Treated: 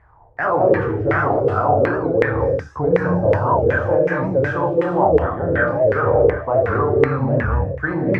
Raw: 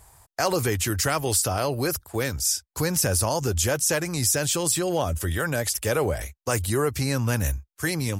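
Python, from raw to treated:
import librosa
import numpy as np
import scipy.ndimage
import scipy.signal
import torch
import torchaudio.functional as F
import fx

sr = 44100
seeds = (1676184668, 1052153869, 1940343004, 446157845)

p1 = np.repeat(x[::2], 2)[:len(x)]
p2 = scipy.signal.sosfilt(scipy.signal.butter(2, 12000.0, 'lowpass', fs=sr, output='sos'), p1)
p3 = fx.high_shelf(p2, sr, hz=7700.0, db=-9.0)
p4 = p3 + fx.room_early_taps(p3, sr, ms=(34, 73), db=(-6.0, -3.5), dry=0)
p5 = fx.rev_gated(p4, sr, seeds[0], gate_ms=240, shape='rising', drr_db=-1.0)
p6 = fx.chorus_voices(p5, sr, voices=6, hz=0.32, base_ms=29, depth_ms=2.1, mix_pct=30)
p7 = fx.high_shelf(p6, sr, hz=2300.0, db=-9.5)
p8 = fx.rider(p7, sr, range_db=10, speed_s=0.5)
p9 = p7 + (p8 * 10.0 ** (2.0 / 20.0))
p10 = fx.filter_lfo_lowpass(p9, sr, shape='saw_down', hz=2.7, low_hz=460.0, high_hz=2000.0, q=5.2)
p11 = fx.record_warp(p10, sr, rpm=78.0, depth_cents=160.0)
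y = p11 * 10.0 ** (-5.5 / 20.0)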